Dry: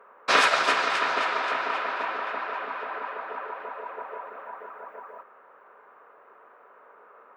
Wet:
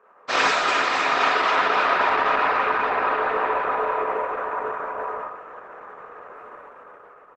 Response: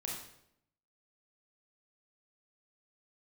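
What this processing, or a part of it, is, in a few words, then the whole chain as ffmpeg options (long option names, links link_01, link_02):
speakerphone in a meeting room: -filter_complex "[1:a]atrim=start_sample=2205[link_01];[0:a][link_01]afir=irnorm=-1:irlink=0,asplit=2[link_02][link_03];[link_03]adelay=90,highpass=300,lowpass=3400,asoftclip=type=hard:threshold=-17dB,volume=-13dB[link_04];[link_02][link_04]amix=inputs=2:normalize=0,dynaudnorm=framelen=240:gausssize=9:maxgain=13.5dB" -ar 48000 -c:a libopus -b:a 12k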